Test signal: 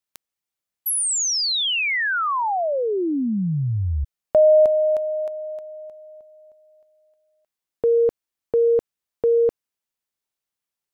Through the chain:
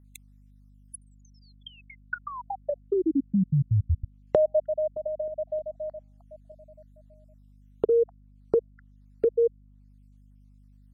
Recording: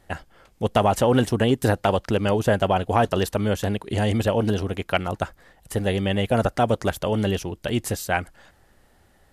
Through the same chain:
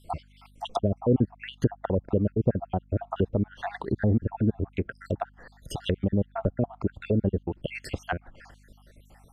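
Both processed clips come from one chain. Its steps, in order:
time-frequency cells dropped at random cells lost 63%
in parallel at −1 dB: downward compressor 4 to 1, threshold −37 dBFS
on the sum: mains hum 50 Hz, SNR 30 dB
treble cut that deepens with the level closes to 420 Hz, closed at −22 dBFS

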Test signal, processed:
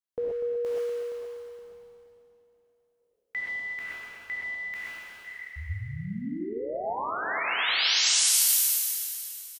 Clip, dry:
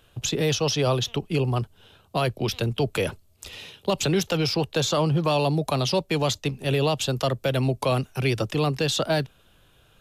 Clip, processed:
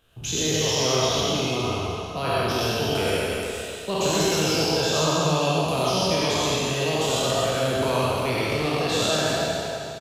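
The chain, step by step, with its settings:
peak hold with a decay on every bin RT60 2.64 s
on a send: single-tap delay 245 ms −9.5 dB
on the sum: reverb whose tail is shaped and stops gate 150 ms rising, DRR −2.5 dB
level −8 dB

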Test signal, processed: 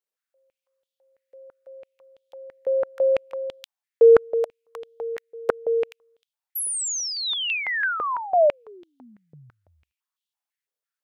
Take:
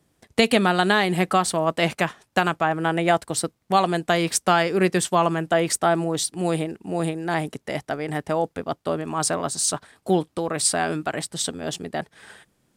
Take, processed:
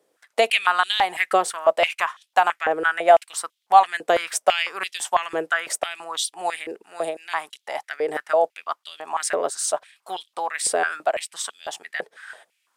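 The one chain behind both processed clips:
dynamic equaliser 4,300 Hz, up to −5 dB, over −42 dBFS, Q 3
high-pass on a step sequencer 6 Hz 470–3,300 Hz
level −2.5 dB

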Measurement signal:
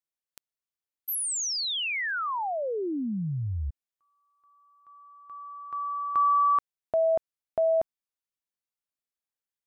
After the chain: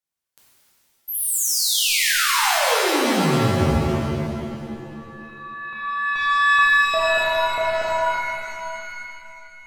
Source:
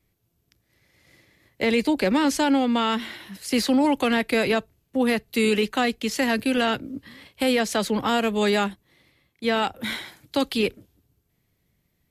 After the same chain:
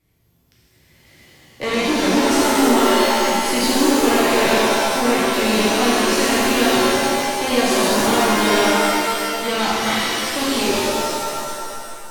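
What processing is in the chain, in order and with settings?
tube saturation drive 23 dB, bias 0.25
reverb with rising layers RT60 2.4 s, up +7 semitones, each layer −2 dB, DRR −7 dB
level +1.5 dB

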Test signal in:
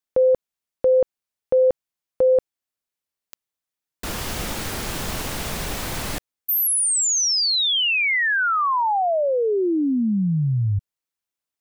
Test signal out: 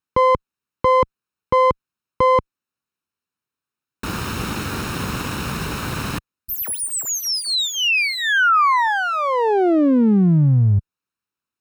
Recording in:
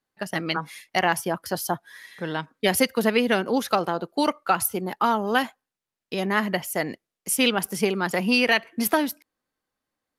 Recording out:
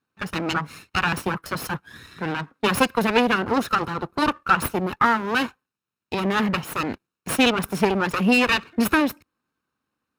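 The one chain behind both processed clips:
lower of the sound and its delayed copy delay 0.74 ms
high-pass filter 78 Hz 12 dB per octave
high-shelf EQ 3,500 Hz −11 dB
level +7.5 dB

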